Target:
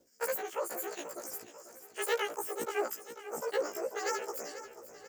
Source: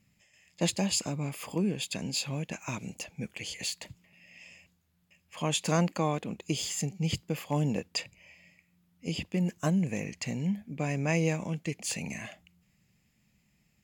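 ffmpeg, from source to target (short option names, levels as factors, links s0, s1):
-af "afftfilt=real='re':imag='-im':win_size=4096:overlap=0.75,lowpass=8800,areverse,acompressor=mode=upward:threshold=0.00178:ratio=2.5,areverse,asetrate=119952,aresample=44100,aecho=1:1:490|980|1470|1960|2450:0.224|0.114|0.0582|0.0297|0.0151"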